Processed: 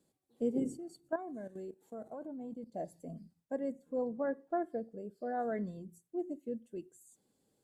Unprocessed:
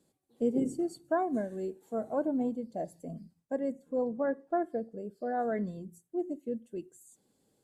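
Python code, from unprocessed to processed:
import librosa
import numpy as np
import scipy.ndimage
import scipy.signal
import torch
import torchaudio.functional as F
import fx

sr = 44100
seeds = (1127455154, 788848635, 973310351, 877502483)

y = fx.level_steps(x, sr, step_db=13, at=(0.77, 2.74))
y = y * 10.0 ** (-4.0 / 20.0)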